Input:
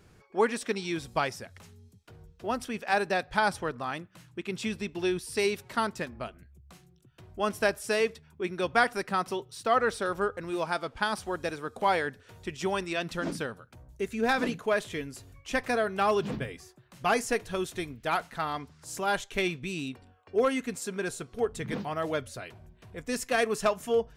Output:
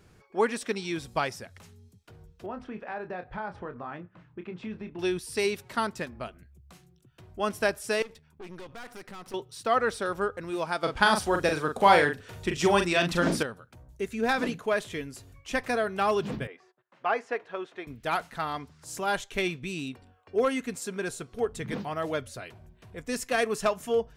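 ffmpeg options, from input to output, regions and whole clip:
ffmpeg -i in.wav -filter_complex "[0:a]asettb=1/sr,asplit=3[link_01][link_02][link_03];[link_01]atrim=end=2.464[link_04];[link_02]atrim=start=2.46:end=4.99,asetpts=PTS-STARTPTS,afade=type=in:duration=0.004:curve=qsin,afade=type=out:start_time=2.526:duration=0.004:curve=qsin,lowpass=1700,acompressor=threshold=-35dB:ratio=3:attack=3.2:release=140:knee=1:detection=peak,asplit=2[link_05][link_06];[link_06]adelay=28,volume=-8.5dB[link_07];[link_05][link_07]amix=inputs=2:normalize=0,atrim=end_sample=111573[link_08];[link_03]atrim=start=4.986[link_09];[link_04][link_08]acrossfade=duration=0.004:curve1=hsin:curve2=qsin[link_10];[link_10][link_09]acrossfade=duration=0.004:curve1=qsin:curve2=hsin,asettb=1/sr,asplit=3[link_11][link_12][link_13];[link_11]atrim=end=8.024[link_14];[link_12]atrim=start=8.02:end=9.34,asetpts=PTS-STARTPTS,afade=type=in:duration=0.004:curve=qsin,afade=type=out:start_time=1.316:duration=0.004:curve=qsin,acompressor=threshold=-31dB:ratio=4:attack=3.2:release=140:knee=1:detection=peak,aeval=exprs='(tanh(100*val(0)+0.75)-tanh(0.75))/100':channel_layout=same[link_15];[link_13]atrim=start=9.336[link_16];[link_14][link_15]acrossfade=duration=0.004:curve1=hsin:curve2=qsin[link_17];[link_17][link_16]acrossfade=duration=0.004:curve1=qsin:curve2=hsin,asettb=1/sr,asplit=3[link_18][link_19][link_20];[link_18]atrim=end=10.834[link_21];[link_19]atrim=start=10.83:end=13.43,asetpts=PTS-STARTPTS,afade=type=in:duration=0.004:curve=qsin,afade=type=out:start_time=2.596:duration=0.004:curve=qsin,acontrast=74,asplit=2[link_22][link_23];[link_23]adelay=40,volume=-6dB[link_24];[link_22][link_24]amix=inputs=2:normalize=0,atrim=end_sample=114660[link_25];[link_20]atrim=start=13.426[link_26];[link_21][link_25]acrossfade=duration=0.004:curve1=hsin:curve2=qsin[link_27];[link_27][link_26]acrossfade=duration=0.004:curve1=qsin:curve2=hsin,asettb=1/sr,asplit=3[link_28][link_29][link_30];[link_28]atrim=end=16.474[link_31];[link_29]atrim=start=16.47:end=17.87,asetpts=PTS-STARTPTS,afade=type=in:duration=0.004:curve=qsin,afade=type=out:start_time=1.396:duration=0.004:curve=qsin,agate=range=-18dB:threshold=-56dB:ratio=16:release=100:detection=peak,highpass=450,lowpass=2000[link_32];[link_30]atrim=start=17.866[link_33];[link_31][link_32]acrossfade=duration=0.004:curve1=hsin:curve2=qsin[link_34];[link_34][link_33]acrossfade=duration=0.004:curve1=qsin:curve2=hsin" out.wav

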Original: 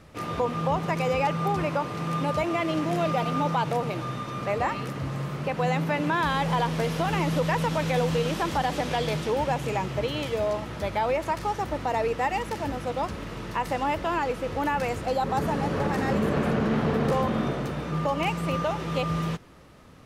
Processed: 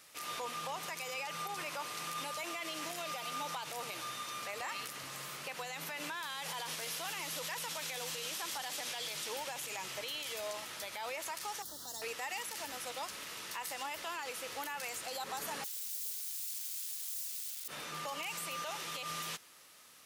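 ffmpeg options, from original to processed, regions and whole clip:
ffmpeg -i in.wav -filter_complex "[0:a]asettb=1/sr,asplit=3[link_01][link_02][link_03];[link_01]atrim=end=11.624[link_04];[link_02]atrim=start=11.62:end=12.02,asetpts=PTS-STARTPTS,afade=type=in:duration=0.004:curve=qsin,afade=type=out:start_time=0.396:duration=0.004:curve=qsin,acrossover=split=310|3000[link_05][link_06][link_07];[link_06]acompressor=threshold=-43dB:ratio=4:attack=3.2:release=140:knee=2.83:detection=peak[link_08];[link_05][link_08][link_07]amix=inputs=3:normalize=0,acrusher=bits=8:mix=0:aa=0.5,asuperstop=centerf=2400:order=4:qfactor=1.2[link_09];[link_03]atrim=start=12.016[link_10];[link_04][link_09]acrossfade=duration=0.004:curve1=hsin:curve2=qsin[link_11];[link_11][link_10]acrossfade=duration=0.004:curve1=qsin:curve2=hsin,asettb=1/sr,asplit=3[link_12][link_13][link_14];[link_12]atrim=end=15.644[link_15];[link_13]atrim=start=15.64:end=17.68,asetpts=PTS-STARTPTS,afade=type=in:duration=0.004:curve=qsin,afade=type=out:start_time=2.036:duration=0.004:curve=qsin,highpass=1000,aeval=exprs='(mod(66.8*val(0)+1,2)-1)/66.8':channel_layout=same,highshelf=frequency=2100:gain=11[link_16];[link_14]atrim=start=17.676[link_17];[link_15][link_16]acrossfade=duration=0.004:curve1=hsin:curve2=qsin[link_18];[link_18][link_17]acrossfade=duration=0.004:curve1=qsin:curve2=hsin,aderivative,alimiter=level_in=14dB:limit=-24dB:level=0:latency=1:release=55,volume=-14dB,volume=7.5dB" out.wav

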